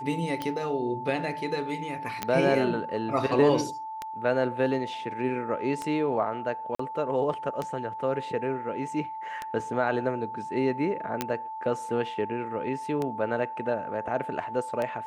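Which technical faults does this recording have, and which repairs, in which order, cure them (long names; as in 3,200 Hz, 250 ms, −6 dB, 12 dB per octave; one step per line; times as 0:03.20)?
scratch tick 33 1/3 rpm −17 dBFS
whistle 880 Hz −34 dBFS
0:02.23: click −12 dBFS
0:06.75–0:06.79: drop-out 44 ms
0:11.21: click −11 dBFS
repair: click removal
notch filter 880 Hz, Q 30
repair the gap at 0:06.75, 44 ms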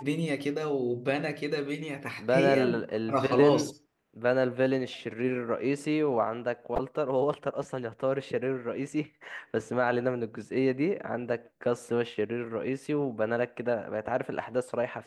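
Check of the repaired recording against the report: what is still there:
0:02.23: click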